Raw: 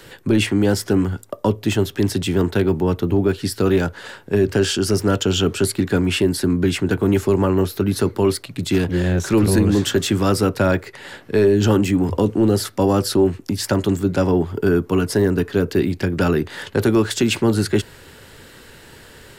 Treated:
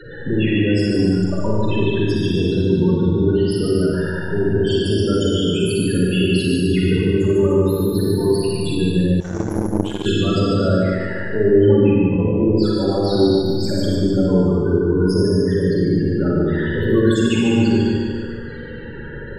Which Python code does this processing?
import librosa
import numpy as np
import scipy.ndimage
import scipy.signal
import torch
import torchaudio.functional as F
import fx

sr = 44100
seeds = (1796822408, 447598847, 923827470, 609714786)

p1 = x + 0.5 * 10.0 ** (-21.5 / 20.0) * np.sign(x)
p2 = fx.level_steps(p1, sr, step_db=12)
p3 = p1 + (p2 * 10.0 ** (-3.0 / 20.0))
p4 = fx.spec_topn(p3, sr, count=16)
p5 = p4 + fx.echo_feedback(p4, sr, ms=146, feedback_pct=50, wet_db=-3, dry=0)
p6 = fx.rev_schroeder(p5, sr, rt60_s=1.3, comb_ms=38, drr_db=-3.5)
p7 = fx.power_curve(p6, sr, exponent=2.0, at=(9.2, 10.06))
y = p7 * 10.0 ** (-9.0 / 20.0)